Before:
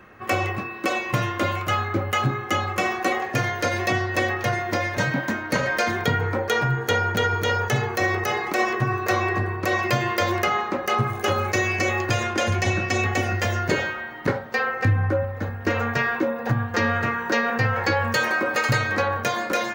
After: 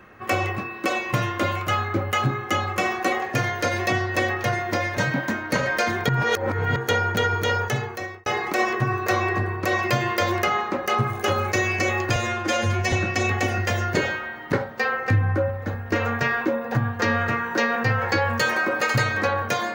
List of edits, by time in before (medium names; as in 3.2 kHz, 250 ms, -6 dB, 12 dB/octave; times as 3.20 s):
6.09–6.76 s: reverse
7.57–8.26 s: fade out
12.16–12.67 s: stretch 1.5×